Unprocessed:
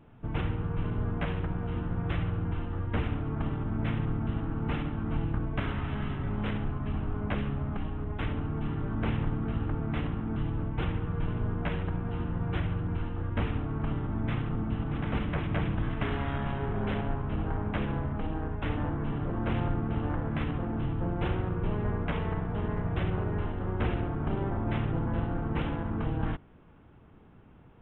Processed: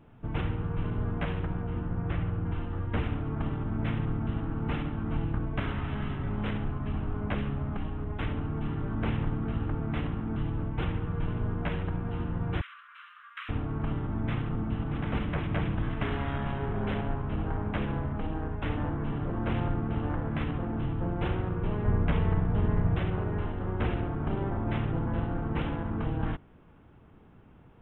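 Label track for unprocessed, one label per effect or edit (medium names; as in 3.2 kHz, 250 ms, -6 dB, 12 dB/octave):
1.620000	2.460000	distance through air 290 m
12.610000	13.490000	steep high-pass 1.1 kHz 96 dB/octave
21.870000	22.960000	bass shelf 190 Hz +8 dB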